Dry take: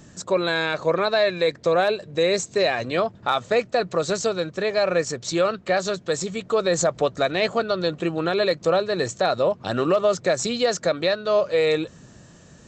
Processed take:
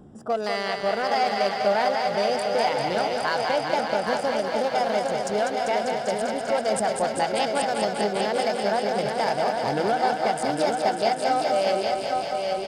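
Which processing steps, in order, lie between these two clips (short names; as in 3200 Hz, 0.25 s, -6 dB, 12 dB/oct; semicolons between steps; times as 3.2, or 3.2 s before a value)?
Wiener smoothing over 25 samples; high shelf 6700 Hz +2.5 dB; in parallel at +2.5 dB: compressor 6:1, threshold -28 dBFS, peak gain reduction 11.5 dB; on the sum: feedback echo 0.813 s, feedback 33%, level -5 dB; pitch shift +3.5 st; on a send: thinning echo 0.197 s, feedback 82%, high-pass 290 Hz, level -5 dB; on the sum: gain -7 dB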